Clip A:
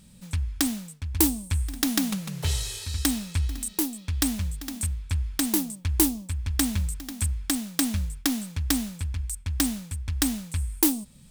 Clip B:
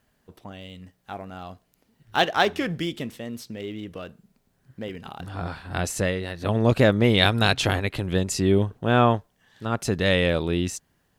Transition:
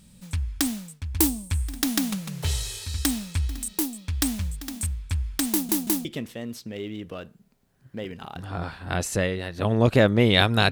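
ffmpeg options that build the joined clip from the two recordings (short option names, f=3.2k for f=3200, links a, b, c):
-filter_complex "[0:a]apad=whole_dur=10.71,atrim=end=10.71,asplit=3[a][b][c];[a]atrim=end=5.692[d];[b]atrim=start=5.508:end=5.692[e];[c]atrim=start=5.508:end=5.692[f];[1:a]atrim=start=2.888:end=7.55[g];[d][e]acrossfade=d=0.004:c1=hsin:c2=hsin[h];[h][f]acrossfade=d=0.004:c1=hsin:c2=hsin[i];[i][g]acrossfade=d=0.004:c1=hsin:c2=hsin"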